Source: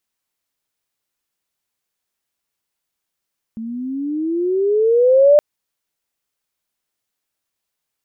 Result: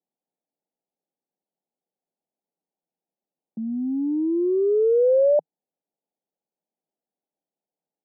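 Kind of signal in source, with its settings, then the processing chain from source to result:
glide logarithmic 220 Hz → 600 Hz −25 dBFS → −6 dBFS 1.82 s
soft clipping −15 dBFS
Chebyshev band-pass filter 160–830 Hz, order 4

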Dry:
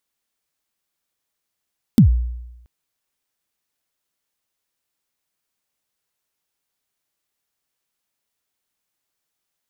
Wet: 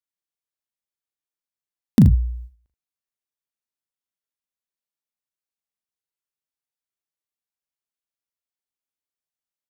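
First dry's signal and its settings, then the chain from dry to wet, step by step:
synth kick length 0.68 s, from 260 Hz, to 60 Hz, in 105 ms, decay 0.96 s, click on, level −4.5 dB
noise gate −36 dBFS, range −17 dB
on a send: ambience of single reflections 37 ms −6.5 dB, 79 ms −12 dB

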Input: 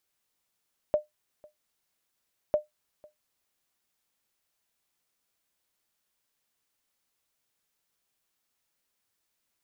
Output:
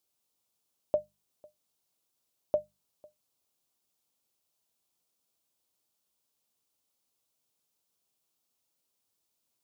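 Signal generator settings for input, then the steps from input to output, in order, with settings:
ping with an echo 603 Hz, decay 0.15 s, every 1.60 s, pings 2, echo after 0.50 s, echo −27 dB −15.5 dBFS
high-pass filter 61 Hz
parametric band 1,800 Hz −11.5 dB 0.95 octaves
mains-hum notches 50/100/150/200 Hz

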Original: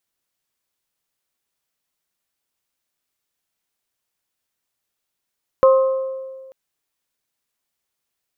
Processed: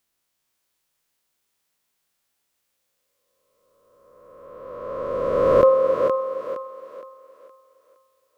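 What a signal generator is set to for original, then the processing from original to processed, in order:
struck glass bell, lowest mode 529 Hz, modes 3, decay 1.67 s, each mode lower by 8 dB, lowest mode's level −7.5 dB
peak hold with a rise ahead of every peak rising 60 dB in 2.15 s
dynamic equaliser 1,100 Hz, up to −5 dB, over −30 dBFS, Q 0.9
feedback echo with a high-pass in the loop 466 ms, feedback 37%, high-pass 250 Hz, level −4.5 dB

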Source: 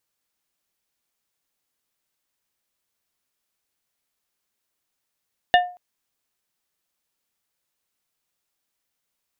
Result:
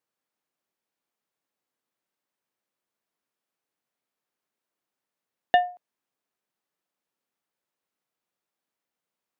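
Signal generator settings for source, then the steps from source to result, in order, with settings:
struck glass plate, length 0.23 s, lowest mode 716 Hz, modes 4, decay 0.37 s, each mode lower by 4 dB, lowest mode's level −9.5 dB
high-pass filter 170 Hz 12 dB per octave
high-shelf EQ 2,300 Hz −12 dB

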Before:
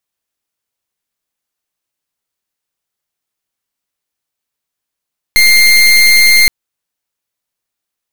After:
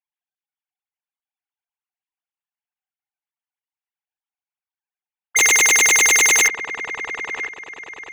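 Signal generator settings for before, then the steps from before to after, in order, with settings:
pulse wave 2,110 Hz, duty 28% −6.5 dBFS 1.12 s
three sine waves on the formant tracks
wave folding −9 dBFS
delay with a low-pass on its return 988 ms, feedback 41%, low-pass 1,900 Hz, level −8 dB

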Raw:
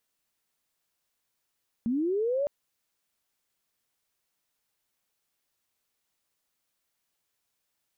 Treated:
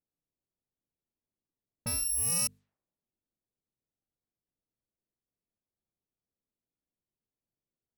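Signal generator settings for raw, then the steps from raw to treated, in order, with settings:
glide linear 220 Hz → 590 Hz −24.5 dBFS → −24.5 dBFS 0.61 s
samples in bit-reversed order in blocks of 128 samples
low-pass that shuts in the quiet parts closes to 350 Hz, open at −31 dBFS
mains-hum notches 50/100/150/200/250/300/350/400/450 Hz

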